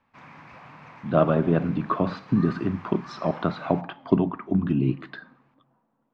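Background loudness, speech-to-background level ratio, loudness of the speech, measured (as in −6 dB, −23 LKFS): −45.0 LKFS, 20.0 dB, −25.0 LKFS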